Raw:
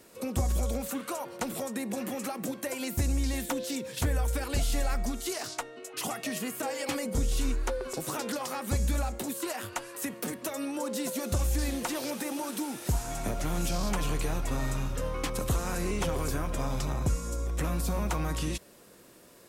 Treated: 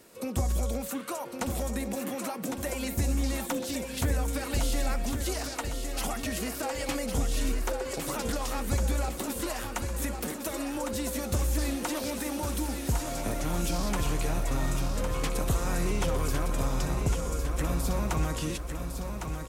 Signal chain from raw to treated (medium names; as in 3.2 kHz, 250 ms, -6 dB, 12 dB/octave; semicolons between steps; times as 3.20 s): feedback delay 1106 ms, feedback 49%, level -6.5 dB